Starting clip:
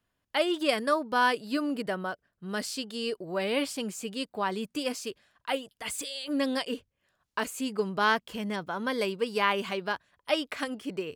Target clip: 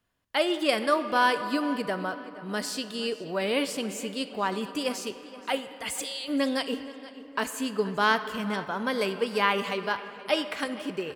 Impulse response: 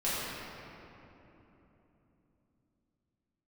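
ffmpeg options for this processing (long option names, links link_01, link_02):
-filter_complex "[0:a]asplit=2[link_01][link_02];[link_02]adelay=475,lowpass=frequency=4500:poles=1,volume=-16.5dB,asplit=2[link_03][link_04];[link_04]adelay=475,lowpass=frequency=4500:poles=1,volume=0.39,asplit=2[link_05][link_06];[link_06]adelay=475,lowpass=frequency=4500:poles=1,volume=0.39[link_07];[link_01][link_03][link_05][link_07]amix=inputs=4:normalize=0,asplit=2[link_08][link_09];[1:a]atrim=start_sample=2205,lowshelf=frequency=290:gain=-11.5[link_10];[link_09][link_10]afir=irnorm=-1:irlink=0,volume=-18dB[link_11];[link_08][link_11]amix=inputs=2:normalize=0,volume=1dB"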